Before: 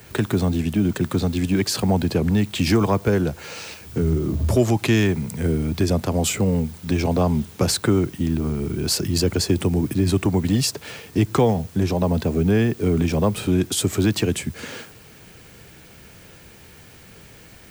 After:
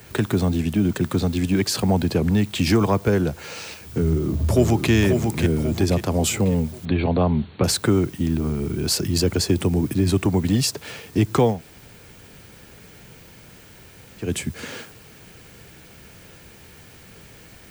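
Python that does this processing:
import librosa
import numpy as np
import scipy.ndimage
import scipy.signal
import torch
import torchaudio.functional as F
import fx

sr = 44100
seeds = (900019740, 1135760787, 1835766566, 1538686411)

y = fx.echo_throw(x, sr, start_s=4.02, length_s=0.9, ms=540, feedback_pct=45, wet_db=-5.0)
y = fx.brickwall_lowpass(y, sr, high_hz=4500.0, at=(6.85, 7.64))
y = fx.edit(y, sr, fx.room_tone_fill(start_s=11.54, length_s=2.72, crossfade_s=0.16), tone=tone)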